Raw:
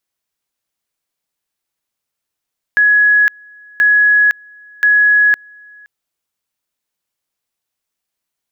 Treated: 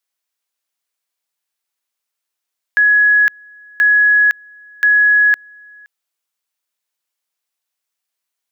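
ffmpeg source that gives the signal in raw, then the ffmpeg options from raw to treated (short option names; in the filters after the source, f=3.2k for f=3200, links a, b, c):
-f lavfi -i "aevalsrc='pow(10,(-7-30*gte(mod(t,1.03),0.51))/20)*sin(2*PI*1680*t)':d=3.09:s=44100"
-af "highpass=f=740:p=1"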